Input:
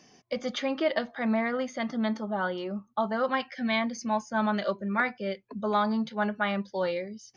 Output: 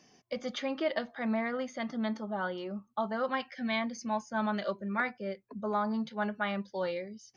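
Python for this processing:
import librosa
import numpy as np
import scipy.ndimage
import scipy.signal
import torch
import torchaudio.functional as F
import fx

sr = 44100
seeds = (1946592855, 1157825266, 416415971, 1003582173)

y = fx.peak_eq(x, sr, hz=3300.0, db=fx.line((5.1, -6.0), (5.93, -14.0)), octaves=0.94, at=(5.1, 5.93), fade=0.02)
y = F.gain(torch.from_numpy(y), -4.5).numpy()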